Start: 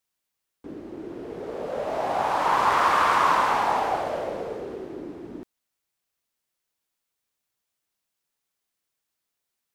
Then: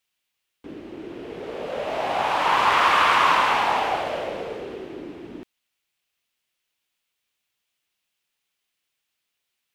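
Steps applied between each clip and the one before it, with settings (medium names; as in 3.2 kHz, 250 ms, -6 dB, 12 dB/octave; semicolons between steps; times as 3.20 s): peaking EQ 2.8 kHz +10.5 dB 1.2 oct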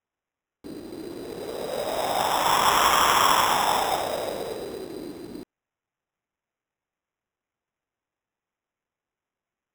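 median filter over 15 samples; sample-and-hold 10×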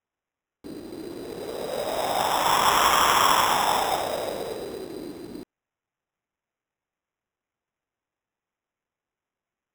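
no audible change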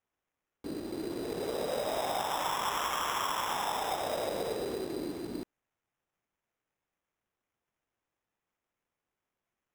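compression 16:1, threshold -29 dBFS, peak gain reduction 14.5 dB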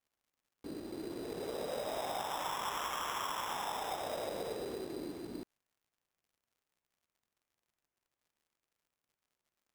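crackle 100 per s -60 dBFS; trim -5.5 dB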